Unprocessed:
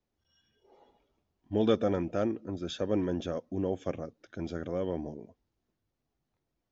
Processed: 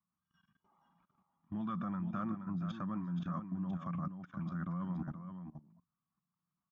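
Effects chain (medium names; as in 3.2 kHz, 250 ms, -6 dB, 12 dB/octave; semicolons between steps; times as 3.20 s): two resonant band-passes 450 Hz, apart 2.7 oct; wow and flutter 25 cents; level held to a coarse grid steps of 18 dB; on a send: delay 475 ms -8.5 dB; on the sum: trim +16.5 dB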